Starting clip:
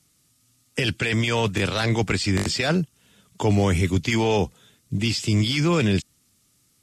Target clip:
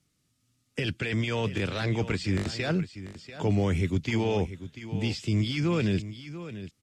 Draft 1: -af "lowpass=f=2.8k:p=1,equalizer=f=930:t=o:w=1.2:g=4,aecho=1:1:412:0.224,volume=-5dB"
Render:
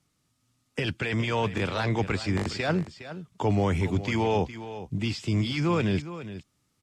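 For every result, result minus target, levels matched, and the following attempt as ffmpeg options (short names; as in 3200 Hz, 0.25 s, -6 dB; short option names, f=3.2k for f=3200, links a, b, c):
echo 0.279 s early; 1000 Hz band +6.0 dB
-af "lowpass=f=2.8k:p=1,equalizer=f=930:t=o:w=1.2:g=4,aecho=1:1:691:0.224,volume=-5dB"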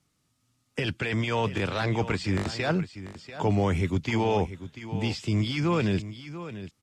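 1000 Hz band +6.0 dB
-af "lowpass=f=2.8k:p=1,equalizer=f=930:t=o:w=1.2:g=-4,aecho=1:1:691:0.224,volume=-5dB"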